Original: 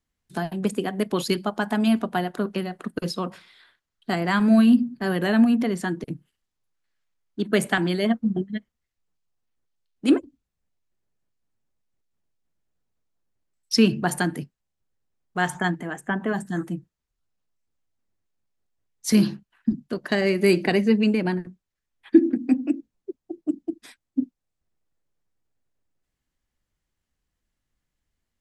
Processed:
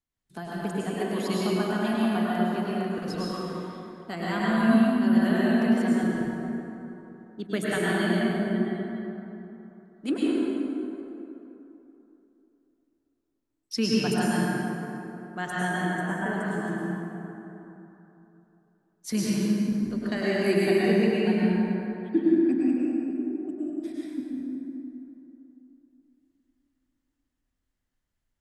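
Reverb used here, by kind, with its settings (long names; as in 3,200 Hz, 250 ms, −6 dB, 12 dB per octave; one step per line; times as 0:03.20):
dense smooth reverb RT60 3.2 s, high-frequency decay 0.5×, pre-delay 90 ms, DRR −7 dB
level −10 dB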